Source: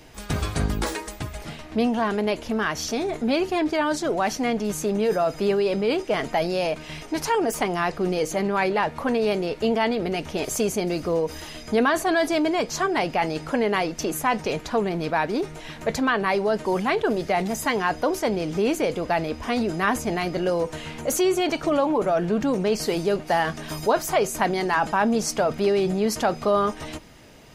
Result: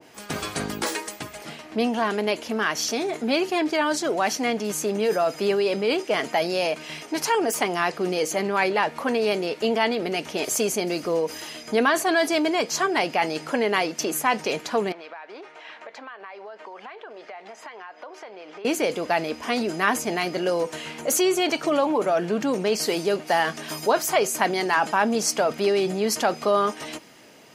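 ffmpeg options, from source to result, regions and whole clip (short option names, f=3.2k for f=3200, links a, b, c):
-filter_complex "[0:a]asettb=1/sr,asplit=3[a][b][c];[a]atrim=end=14.924[d];[b]atrim=start=14.92:end=18.65,asetpts=PTS-STARTPTS,afade=t=in:d=0.004:c=qsin,afade=t=out:st=3.726:d=0.004:c=qsin,highpass=680,lowpass=2.9k,acompressor=threshold=-36dB:ratio=8:attack=3.2:release=140:knee=1:detection=peak[e];[c]atrim=start=18.646[f];[d][e]acrossfade=d=0.004:c1=hsin:c2=qsin[g];[g][f]acrossfade=d=0.004:c1=qsin:c2=hsin,highpass=220,bandreject=f=3.7k:w=23,adynamicequalizer=threshold=0.0178:dfrequency=1700:dqfactor=0.7:tfrequency=1700:tqfactor=0.7:attack=5:release=100:ratio=0.375:range=2:mode=boostabove:tftype=highshelf"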